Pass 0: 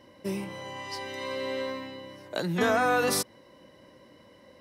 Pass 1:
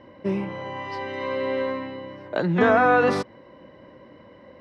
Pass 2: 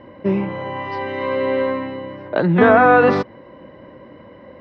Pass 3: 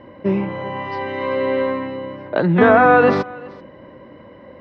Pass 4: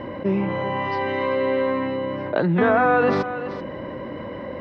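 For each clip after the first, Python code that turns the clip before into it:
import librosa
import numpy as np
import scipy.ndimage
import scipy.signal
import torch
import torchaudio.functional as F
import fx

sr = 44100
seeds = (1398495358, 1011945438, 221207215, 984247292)

y1 = scipy.signal.sosfilt(scipy.signal.butter(2, 2100.0, 'lowpass', fs=sr, output='sos'), x)
y1 = F.gain(torch.from_numpy(y1), 7.0).numpy()
y2 = fx.air_absorb(y1, sr, metres=200.0)
y2 = F.gain(torch.from_numpy(y2), 7.0).numpy()
y3 = y2 + 10.0 ** (-22.0 / 20.0) * np.pad(y2, (int(384 * sr / 1000.0), 0))[:len(y2)]
y4 = fx.env_flatten(y3, sr, amount_pct=50)
y4 = F.gain(torch.from_numpy(y4), -7.0).numpy()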